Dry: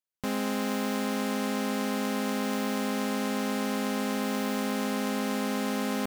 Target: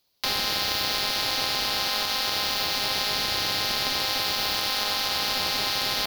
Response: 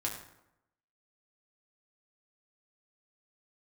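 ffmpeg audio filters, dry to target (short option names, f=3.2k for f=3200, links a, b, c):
-filter_complex "[0:a]highpass=f=790:t=q:w=1.6,equalizer=f=12k:t=o:w=2.7:g=5,crystalizer=i=8.5:c=0,highshelf=f=6k:t=q:w=3:g=-11,asplit=2[a][b];[b]acrusher=samples=24:mix=1:aa=0.000001:lfo=1:lforange=14.4:lforate=0.36,volume=-11.5dB[c];[a][c]amix=inputs=2:normalize=0,acompressor=threshold=-24dB:ratio=10,alimiter=level_in=11.5dB:limit=-1dB:release=50:level=0:latency=1,volume=-7.5dB"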